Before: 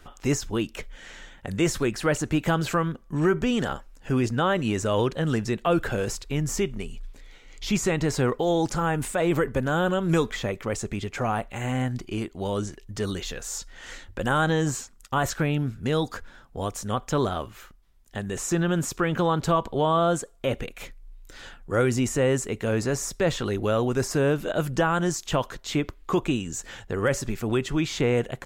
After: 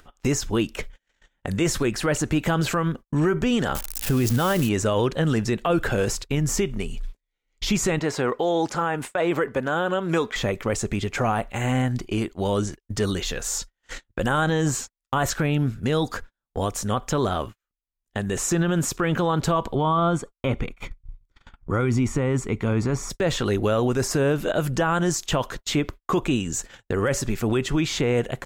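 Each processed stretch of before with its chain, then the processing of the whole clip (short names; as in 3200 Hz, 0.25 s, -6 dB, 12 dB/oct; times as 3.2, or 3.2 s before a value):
3.75–4.69 switching spikes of -22 dBFS + low shelf 180 Hz +6 dB
7.99–10.36 HPF 410 Hz 6 dB/oct + high shelf 5400 Hz -10.5 dB
19.75–23.1 LPF 2200 Hz 6 dB/oct + comb 0.9 ms, depth 47%
whole clip: gate -37 dBFS, range -52 dB; upward compressor, threshold -28 dBFS; limiter -17.5 dBFS; gain +4.5 dB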